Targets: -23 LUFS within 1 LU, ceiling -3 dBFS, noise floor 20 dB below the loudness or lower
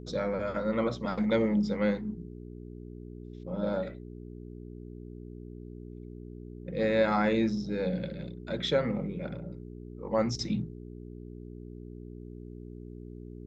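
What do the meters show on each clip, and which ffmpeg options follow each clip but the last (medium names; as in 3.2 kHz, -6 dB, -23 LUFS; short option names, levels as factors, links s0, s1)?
hum 60 Hz; highest harmonic 420 Hz; hum level -41 dBFS; loudness -30.5 LUFS; peak level -13.0 dBFS; loudness target -23.0 LUFS
-> -af "bandreject=f=60:t=h:w=4,bandreject=f=120:t=h:w=4,bandreject=f=180:t=h:w=4,bandreject=f=240:t=h:w=4,bandreject=f=300:t=h:w=4,bandreject=f=360:t=h:w=4,bandreject=f=420:t=h:w=4"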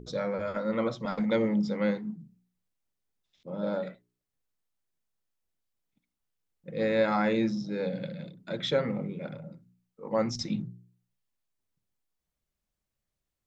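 hum not found; loudness -30.5 LUFS; peak level -13.5 dBFS; loudness target -23.0 LUFS
-> -af "volume=2.37"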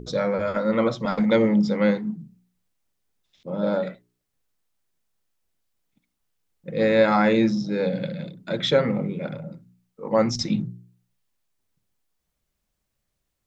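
loudness -23.0 LUFS; peak level -6.0 dBFS; noise floor -78 dBFS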